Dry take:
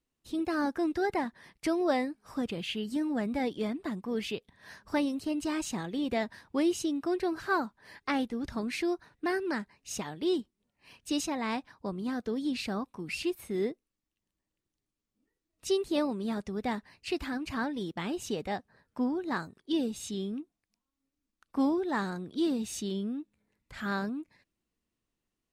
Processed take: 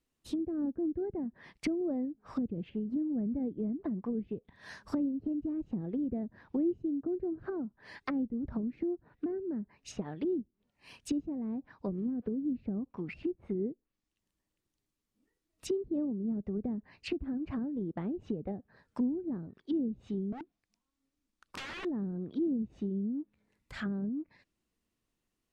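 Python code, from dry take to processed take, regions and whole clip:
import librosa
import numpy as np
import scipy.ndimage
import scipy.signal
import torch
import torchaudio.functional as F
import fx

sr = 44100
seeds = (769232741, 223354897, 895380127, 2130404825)

y = fx.chain(x, sr, fx.crossing_spikes(level_db=-33.0),
    fx.resample_bad(factor=6, down='filtered', up='hold'), at=(11.88, 12.46))
y = fx.chain(y, sr, fx.lowpass(hz=10000.0, slope=12),
    fx.overflow_wrap(gain_db=35.0), at=(20.32, 21.85))
y = fx.dynamic_eq(y, sr, hz=950.0, q=1.7, threshold_db=-49.0, ratio=4.0, max_db=-6)
y = fx.env_lowpass_down(y, sr, base_hz=300.0, full_db=-30.5)
y = y * 10.0 ** (1.5 / 20.0)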